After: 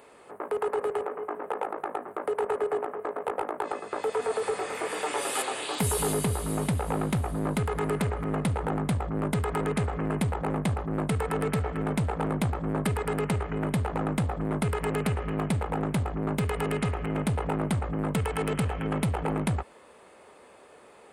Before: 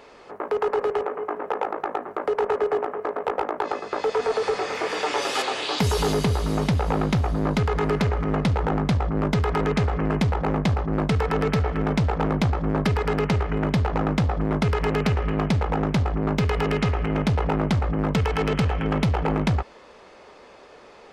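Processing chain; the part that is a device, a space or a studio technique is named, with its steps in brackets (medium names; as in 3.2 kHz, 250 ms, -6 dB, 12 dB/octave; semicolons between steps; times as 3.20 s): budget condenser microphone (high-pass 68 Hz; resonant high shelf 7.2 kHz +9.5 dB, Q 3); trim -5 dB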